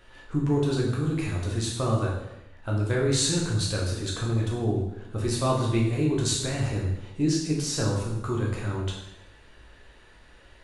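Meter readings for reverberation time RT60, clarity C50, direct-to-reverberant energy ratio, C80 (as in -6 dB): 0.90 s, 3.5 dB, -3.0 dB, 6.0 dB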